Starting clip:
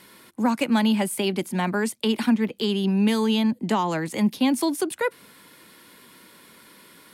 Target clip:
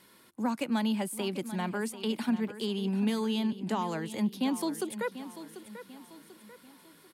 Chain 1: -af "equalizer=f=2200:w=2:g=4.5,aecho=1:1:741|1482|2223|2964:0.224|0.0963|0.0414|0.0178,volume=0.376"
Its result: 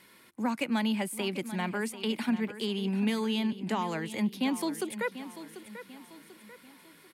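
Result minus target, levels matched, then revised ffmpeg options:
2 kHz band +4.0 dB
-af "equalizer=f=2200:w=2:g=-2.5,aecho=1:1:741|1482|2223|2964:0.224|0.0963|0.0414|0.0178,volume=0.376"

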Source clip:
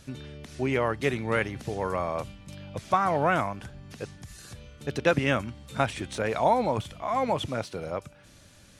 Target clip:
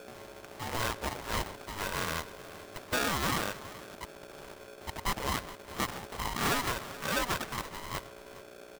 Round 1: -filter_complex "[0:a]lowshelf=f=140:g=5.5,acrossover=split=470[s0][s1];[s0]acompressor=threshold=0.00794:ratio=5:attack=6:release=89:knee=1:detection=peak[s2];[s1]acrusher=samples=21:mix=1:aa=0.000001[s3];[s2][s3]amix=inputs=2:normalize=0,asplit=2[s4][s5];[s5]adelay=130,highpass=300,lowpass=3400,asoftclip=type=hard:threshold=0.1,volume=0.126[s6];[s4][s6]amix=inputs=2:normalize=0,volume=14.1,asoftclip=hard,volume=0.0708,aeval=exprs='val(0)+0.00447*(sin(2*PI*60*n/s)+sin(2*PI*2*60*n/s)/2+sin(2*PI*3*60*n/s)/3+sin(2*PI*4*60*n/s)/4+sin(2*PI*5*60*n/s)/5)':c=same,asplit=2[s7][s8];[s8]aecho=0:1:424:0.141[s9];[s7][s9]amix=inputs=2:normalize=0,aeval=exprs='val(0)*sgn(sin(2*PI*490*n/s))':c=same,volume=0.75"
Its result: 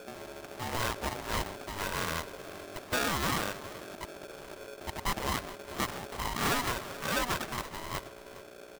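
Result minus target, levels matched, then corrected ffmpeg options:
compression: peak gain reduction -8.5 dB
-filter_complex "[0:a]lowshelf=f=140:g=5.5,acrossover=split=470[s0][s1];[s0]acompressor=threshold=0.00237:ratio=5:attack=6:release=89:knee=1:detection=peak[s2];[s1]acrusher=samples=21:mix=1:aa=0.000001[s3];[s2][s3]amix=inputs=2:normalize=0,asplit=2[s4][s5];[s5]adelay=130,highpass=300,lowpass=3400,asoftclip=type=hard:threshold=0.1,volume=0.126[s6];[s4][s6]amix=inputs=2:normalize=0,volume=14.1,asoftclip=hard,volume=0.0708,aeval=exprs='val(0)+0.00447*(sin(2*PI*60*n/s)+sin(2*PI*2*60*n/s)/2+sin(2*PI*3*60*n/s)/3+sin(2*PI*4*60*n/s)/4+sin(2*PI*5*60*n/s)/5)':c=same,asplit=2[s7][s8];[s8]aecho=0:1:424:0.141[s9];[s7][s9]amix=inputs=2:normalize=0,aeval=exprs='val(0)*sgn(sin(2*PI*490*n/s))':c=same,volume=0.75"

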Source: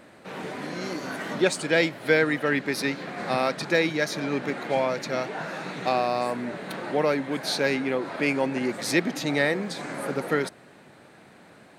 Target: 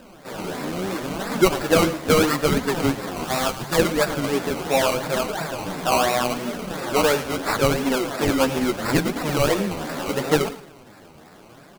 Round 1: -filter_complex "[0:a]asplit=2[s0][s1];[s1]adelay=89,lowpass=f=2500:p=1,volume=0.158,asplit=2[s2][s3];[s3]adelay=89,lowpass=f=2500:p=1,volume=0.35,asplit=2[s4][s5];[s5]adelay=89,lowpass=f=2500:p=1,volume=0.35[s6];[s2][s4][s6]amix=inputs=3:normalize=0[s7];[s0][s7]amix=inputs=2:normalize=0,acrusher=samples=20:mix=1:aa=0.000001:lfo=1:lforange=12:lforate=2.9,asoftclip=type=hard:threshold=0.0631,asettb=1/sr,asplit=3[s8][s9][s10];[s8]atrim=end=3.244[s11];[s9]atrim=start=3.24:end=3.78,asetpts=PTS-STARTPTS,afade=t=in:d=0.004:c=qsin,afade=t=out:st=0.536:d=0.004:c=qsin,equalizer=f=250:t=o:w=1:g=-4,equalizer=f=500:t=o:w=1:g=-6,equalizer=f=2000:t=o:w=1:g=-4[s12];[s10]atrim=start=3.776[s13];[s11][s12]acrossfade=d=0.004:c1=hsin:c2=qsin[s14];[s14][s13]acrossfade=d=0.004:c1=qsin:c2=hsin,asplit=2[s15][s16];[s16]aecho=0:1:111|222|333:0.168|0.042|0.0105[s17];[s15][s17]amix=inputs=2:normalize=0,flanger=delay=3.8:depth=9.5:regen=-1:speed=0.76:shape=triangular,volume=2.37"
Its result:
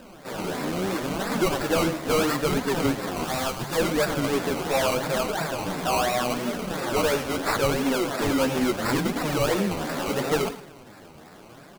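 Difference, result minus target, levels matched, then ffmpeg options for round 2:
hard clipper: distortion +16 dB
-filter_complex "[0:a]asplit=2[s0][s1];[s1]adelay=89,lowpass=f=2500:p=1,volume=0.158,asplit=2[s2][s3];[s3]adelay=89,lowpass=f=2500:p=1,volume=0.35,asplit=2[s4][s5];[s5]adelay=89,lowpass=f=2500:p=1,volume=0.35[s6];[s2][s4][s6]amix=inputs=3:normalize=0[s7];[s0][s7]amix=inputs=2:normalize=0,acrusher=samples=20:mix=1:aa=0.000001:lfo=1:lforange=12:lforate=2.9,asoftclip=type=hard:threshold=0.224,asettb=1/sr,asplit=3[s8][s9][s10];[s8]atrim=end=3.244[s11];[s9]atrim=start=3.24:end=3.78,asetpts=PTS-STARTPTS,afade=t=in:d=0.004:c=qsin,afade=t=out:st=0.536:d=0.004:c=qsin,equalizer=f=250:t=o:w=1:g=-4,equalizer=f=500:t=o:w=1:g=-6,equalizer=f=2000:t=o:w=1:g=-4[s12];[s10]atrim=start=3.776[s13];[s11][s12]acrossfade=d=0.004:c1=hsin:c2=qsin[s14];[s14][s13]acrossfade=d=0.004:c1=qsin:c2=hsin,asplit=2[s15][s16];[s16]aecho=0:1:111|222|333:0.168|0.042|0.0105[s17];[s15][s17]amix=inputs=2:normalize=0,flanger=delay=3.8:depth=9.5:regen=-1:speed=0.76:shape=triangular,volume=2.37"

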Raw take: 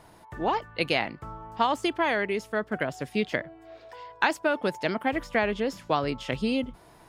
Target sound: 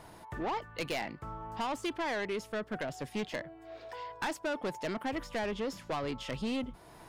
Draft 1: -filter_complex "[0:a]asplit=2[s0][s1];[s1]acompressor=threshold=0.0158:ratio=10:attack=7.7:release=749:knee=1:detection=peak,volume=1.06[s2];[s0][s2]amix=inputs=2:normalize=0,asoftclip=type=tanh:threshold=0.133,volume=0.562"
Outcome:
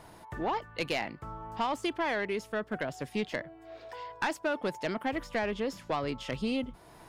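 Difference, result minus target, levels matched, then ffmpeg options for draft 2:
saturation: distortion -6 dB
-filter_complex "[0:a]asplit=2[s0][s1];[s1]acompressor=threshold=0.0158:ratio=10:attack=7.7:release=749:knee=1:detection=peak,volume=1.06[s2];[s0][s2]amix=inputs=2:normalize=0,asoftclip=type=tanh:threshold=0.0596,volume=0.562"

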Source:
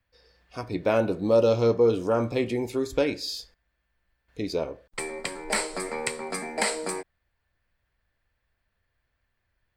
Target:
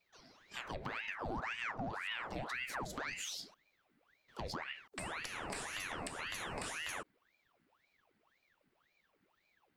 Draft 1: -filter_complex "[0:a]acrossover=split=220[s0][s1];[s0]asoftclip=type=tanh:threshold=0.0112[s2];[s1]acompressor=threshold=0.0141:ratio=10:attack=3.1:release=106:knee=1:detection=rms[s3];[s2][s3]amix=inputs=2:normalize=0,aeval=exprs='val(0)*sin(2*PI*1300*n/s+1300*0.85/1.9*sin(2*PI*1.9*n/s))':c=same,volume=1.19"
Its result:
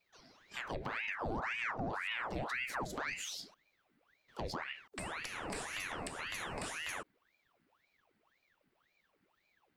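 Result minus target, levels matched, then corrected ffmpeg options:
saturation: distortion -5 dB
-filter_complex "[0:a]acrossover=split=220[s0][s1];[s0]asoftclip=type=tanh:threshold=0.00335[s2];[s1]acompressor=threshold=0.0141:ratio=10:attack=3.1:release=106:knee=1:detection=rms[s3];[s2][s3]amix=inputs=2:normalize=0,aeval=exprs='val(0)*sin(2*PI*1300*n/s+1300*0.85/1.9*sin(2*PI*1.9*n/s))':c=same,volume=1.19"

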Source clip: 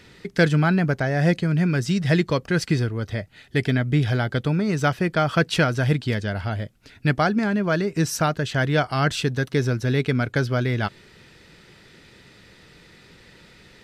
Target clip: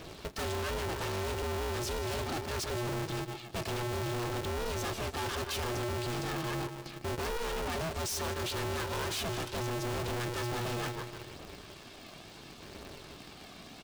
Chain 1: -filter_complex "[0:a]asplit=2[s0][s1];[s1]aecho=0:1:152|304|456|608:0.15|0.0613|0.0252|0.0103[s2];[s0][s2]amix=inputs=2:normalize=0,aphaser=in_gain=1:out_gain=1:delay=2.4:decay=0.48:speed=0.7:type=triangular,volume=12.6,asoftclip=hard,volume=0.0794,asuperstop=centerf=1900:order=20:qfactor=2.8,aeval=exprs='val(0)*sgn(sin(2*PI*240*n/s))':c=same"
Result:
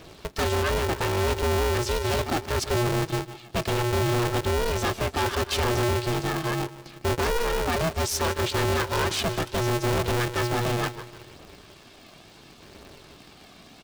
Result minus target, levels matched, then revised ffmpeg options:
overload inside the chain: distortion -4 dB
-filter_complex "[0:a]asplit=2[s0][s1];[s1]aecho=0:1:152|304|456|608:0.15|0.0613|0.0252|0.0103[s2];[s0][s2]amix=inputs=2:normalize=0,aphaser=in_gain=1:out_gain=1:delay=2.4:decay=0.48:speed=0.7:type=triangular,volume=47.3,asoftclip=hard,volume=0.0211,asuperstop=centerf=1900:order=20:qfactor=2.8,aeval=exprs='val(0)*sgn(sin(2*PI*240*n/s))':c=same"

